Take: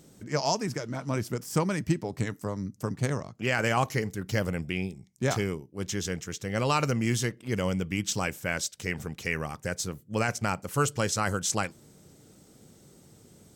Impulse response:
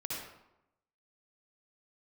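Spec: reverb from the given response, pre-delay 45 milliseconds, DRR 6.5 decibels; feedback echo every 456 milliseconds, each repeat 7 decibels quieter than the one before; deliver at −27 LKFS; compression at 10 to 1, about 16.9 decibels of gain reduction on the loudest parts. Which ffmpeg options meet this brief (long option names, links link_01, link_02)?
-filter_complex "[0:a]acompressor=threshold=-38dB:ratio=10,aecho=1:1:456|912|1368|1824|2280:0.447|0.201|0.0905|0.0407|0.0183,asplit=2[link_01][link_02];[1:a]atrim=start_sample=2205,adelay=45[link_03];[link_02][link_03]afir=irnorm=-1:irlink=0,volume=-8.5dB[link_04];[link_01][link_04]amix=inputs=2:normalize=0,volume=14.5dB"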